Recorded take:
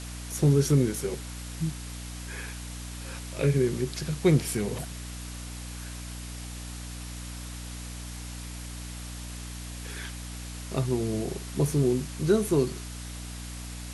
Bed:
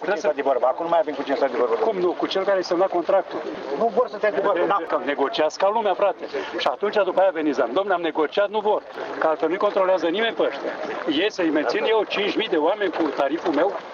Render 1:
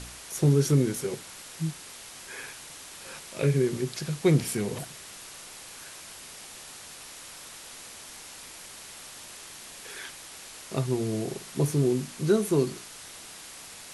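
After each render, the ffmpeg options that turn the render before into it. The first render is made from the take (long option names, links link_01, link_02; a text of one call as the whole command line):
ffmpeg -i in.wav -af "bandreject=frequency=60:width_type=h:width=4,bandreject=frequency=120:width_type=h:width=4,bandreject=frequency=180:width_type=h:width=4,bandreject=frequency=240:width_type=h:width=4,bandreject=frequency=300:width_type=h:width=4" out.wav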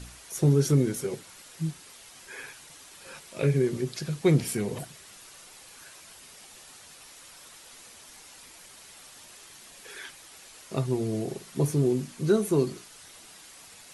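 ffmpeg -i in.wav -af "afftdn=noise_reduction=7:noise_floor=-45" out.wav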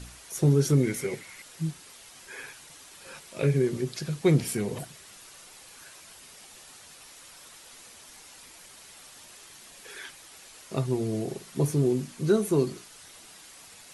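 ffmpeg -i in.wav -filter_complex "[0:a]asettb=1/sr,asplit=3[link_01][link_02][link_03];[link_01]atrim=end=0.834[link_04];[link_02]atrim=start=0.83:end=1.42,asetpts=PTS-STARTPTS,afade=type=in:duration=0.004:curve=qsin,afade=type=out:start_time=0.586:duration=0.004:curve=qsin,equalizer=frequency=2100:width_type=o:width=0.34:gain=14.5[link_05];[link_03]atrim=start=1.416[link_06];[link_04][link_05]acrossfade=duration=0.004:curve1=hsin:curve2=qsin[link_07];[link_07][link_06]acrossfade=duration=0.004:curve1=qsin:curve2=hsin" out.wav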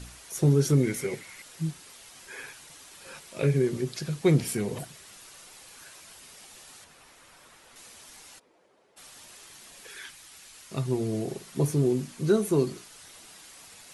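ffmpeg -i in.wav -filter_complex "[0:a]asettb=1/sr,asplit=3[link_01][link_02][link_03];[link_01]atrim=end=6.844[link_04];[link_02]atrim=start=6.84:end=7.76,asetpts=PTS-STARTPTS,afade=type=in:duration=0.004:curve=qsin,afade=type=out:start_time=0.916:duration=0.004:curve=qsin,acrossover=split=2500[link_05][link_06];[link_06]acompressor=threshold=-56dB:ratio=4:attack=1:release=60[link_07];[link_05][link_07]amix=inputs=2:normalize=0[link_08];[link_03]atrim=start=7.756[link_09];[link_04][link_08]acrossfade=duration=0.004:curve1=hsin:curve2=qsin[link_10];[link_10][link_09]acrossfade=duration=0.004:curve1=qsin:curve2=hsin,asplit=3[link_11][link_12][link_13];[link_11]afade=type=out:start_time=8.38:duration=0.02[link_14];[link_12]bandpass=frequency=450:width_type=q:width=1.6,afade=type=in:start_time=8.38:duration=0.02,afade=type=out:start_time=8.96:duration=0.02[link_15];[link_13]afade=type=in:start_time=8.96:duration=0.02[link_16];[link_14][link_15][link_16]amix=inputs=3:normalize=0,asettb=1/sr,asplit=3[link_17][link_18][link_19];[link_17]atrim=end=9.874[link_20];[link_18]atrim=start=9.87:end=10.86,asetpts=PTS-STARTPTS,afade=type=in:duration=0.004:curve=qsin,afade=type=out:start_time=0.986:duration=0.004:curve=qsin,equalizer=frequency=510:width=0.68:gain=-6.5[link_21];[link_19]atrim=start=10.856[link_22];[link_20][link_21]acrossfade=duration=0.004:curve1=hsin:curve2=qsin[link_23];[link_23][link_22]acrossfade=duration=0.004:curve1=qsin:curve2=hsin" out.wav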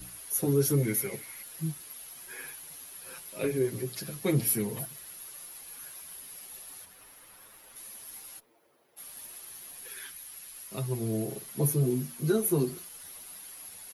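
ffmpeg -i in.wav -filter_complex "[0:a]acrossover=split=110|1200|3100[link_01][link_02][link_03][link_04];[link_04]aexciter=amount=14.7:drive=2.5:freq=11000[link_05];[link_01][link_02][link_03][link_05]amix=inputs=4:normalize=0,asplit=2[link_06][link_07];[link_07]adelay=7.6,afreqshift=0.29[link_08];[link_06][link_08]amix=inputs=2:normalize=1" out.wav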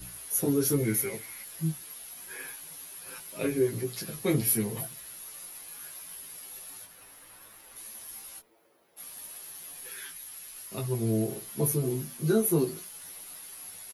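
ffmpeg -i in.wav -filter_complex "[0:a]asplit=2[link_01][link_02];[link_02]adelay=18,volume=-4dB[link_03];[link_01][link_03]amix=inputs=2:normalize=0" out.wav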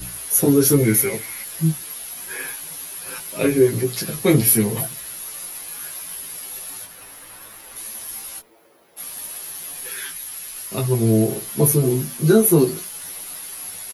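ffmpeg -i in.wav -af "volume=11dB,alimiter=limit=-3dB:level=0:latency=1" out.wav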